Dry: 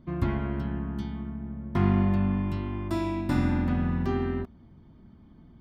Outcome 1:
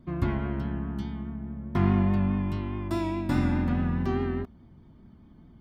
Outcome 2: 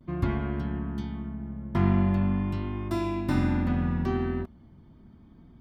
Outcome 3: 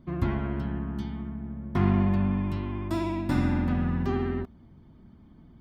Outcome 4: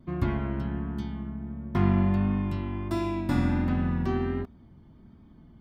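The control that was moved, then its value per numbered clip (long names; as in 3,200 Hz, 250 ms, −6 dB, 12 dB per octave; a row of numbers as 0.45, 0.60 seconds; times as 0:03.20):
pitch vibrato, speed: 4.8, 0.41, 16, 1.4 Hertz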